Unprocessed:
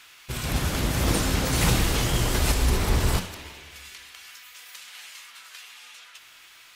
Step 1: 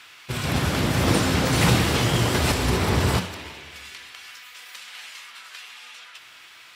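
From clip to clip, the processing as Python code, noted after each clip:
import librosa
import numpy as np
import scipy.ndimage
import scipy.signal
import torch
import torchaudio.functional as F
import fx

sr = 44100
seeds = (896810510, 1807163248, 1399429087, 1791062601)

y = scipy.signal.sosfilt(scipy.signal.butter(4, 80.0, 'highpass', fs=sr, output='sos'), x)
y = fx.high_shelf(y, sr, hz=7400.0, db=-10.0)
y = fx.notch(y, sr, hz=6500.0, q=23.0)
y = F.gain(torch.from_numpy(y), 5.0).numpy()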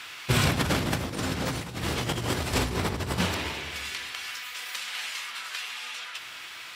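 y = fx.over_compress(x, sr, threshold_db=-26.0, ratio=-0.5)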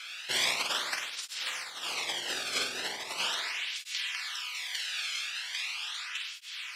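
y = fx.bandpass_q(x, sr, hz=4000.0, q=0.67)
y = fx.room_flutter(y, sr, wall_m=8.3, rt60_s=0.6)
y = fx.flanger_cancel(y, sr, hz=0.39, depth_ms=1.1)
y = F.gain(torch.from_numpy(y), 3.0).numpy()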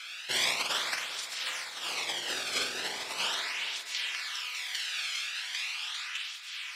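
y = fx.echo_thinned(x, sr, ms=400, feedback_pct=54, hz=160.0, wet_db=-12.0)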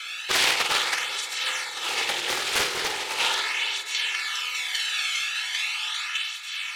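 y = fx.notch(x, sr, hz=5000.0, q=7.0)
y = y + 0.64 * np.pad(y, (int(2.3 * sr / 1000.0), 0))[:len(y)]
y = fx.doppler_dist(y, sr, depth_ms=0.6)
y = F.gain(torch.from_numpy(y), 6.5).numpy()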